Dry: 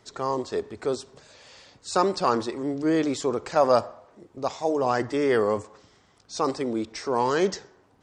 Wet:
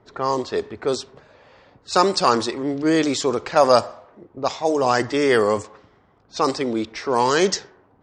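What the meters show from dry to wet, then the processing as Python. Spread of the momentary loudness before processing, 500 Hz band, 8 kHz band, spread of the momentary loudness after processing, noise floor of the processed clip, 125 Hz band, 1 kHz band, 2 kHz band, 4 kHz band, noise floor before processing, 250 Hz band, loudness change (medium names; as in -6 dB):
10 LU, +4.5 dB, +8.0 dB, 10 LU, -58 dBFS, +4.0 dB, +5.5 dB, +7.5 dB, +10.0 dB, -61 dBFS, +4.0 dB, +5.0 dB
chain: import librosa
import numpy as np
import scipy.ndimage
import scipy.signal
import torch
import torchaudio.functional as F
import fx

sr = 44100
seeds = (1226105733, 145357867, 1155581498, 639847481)

y = fx.high_shelf(x, sr, hz=2100.0, db=9.0)
y = fx.env_lowpass(y, sr, base_hz=970.0, full_db=-18.5)
y = y * librosa.db_to_amplitude(4.0)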